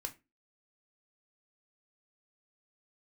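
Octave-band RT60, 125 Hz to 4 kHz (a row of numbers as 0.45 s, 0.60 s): 0.30 s, 0.40 s, 0.25 s, 0.20 s, 0.25 s, 0.20 s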